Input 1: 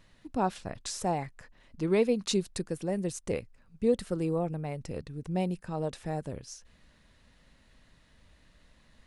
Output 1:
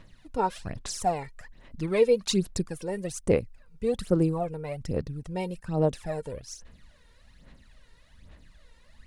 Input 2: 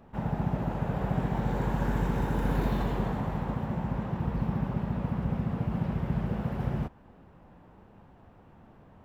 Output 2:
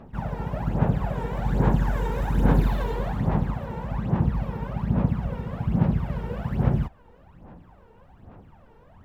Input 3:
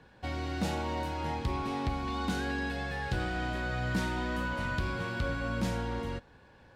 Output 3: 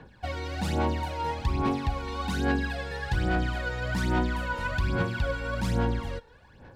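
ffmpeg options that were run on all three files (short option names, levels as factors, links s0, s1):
-af "aphaser=in_gain=1:out_gain=1:delay=2.2:decay=0.67:speed=1.2:type=sinusoidal"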